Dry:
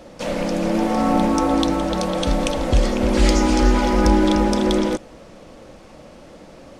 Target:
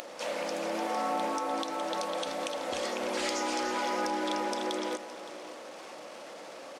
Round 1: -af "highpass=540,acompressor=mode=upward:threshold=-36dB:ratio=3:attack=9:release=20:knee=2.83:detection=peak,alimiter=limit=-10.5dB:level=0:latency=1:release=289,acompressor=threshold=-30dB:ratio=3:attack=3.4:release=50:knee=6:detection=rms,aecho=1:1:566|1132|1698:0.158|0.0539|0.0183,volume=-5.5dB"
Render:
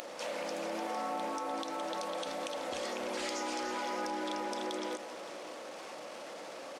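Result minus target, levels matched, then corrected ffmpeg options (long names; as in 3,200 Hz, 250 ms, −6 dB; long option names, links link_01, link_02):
downward compressor: peak gain reduction +6 dB
-af "highpass=540,acompressor=mode=upward:threshold=-36dB:ratio=3:attack=9:release=20:knee=2.83:detection=peak,alimiter=limit=-10.5dB:level=0:latency=1:release=289,acompressor=threshold=-21dB:ratio=3:attack=3.4:release=50:knee=6:detection=rms,aecho=1:1:566|1132|1698:0.158|0.0539|0.0183,volume=-5.5dB"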